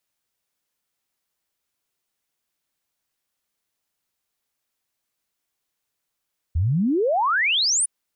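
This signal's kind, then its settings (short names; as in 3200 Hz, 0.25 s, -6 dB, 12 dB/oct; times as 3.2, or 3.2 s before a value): log sweep 74 Hz -> 10000 Hz 1.31 s -17.5 dBFS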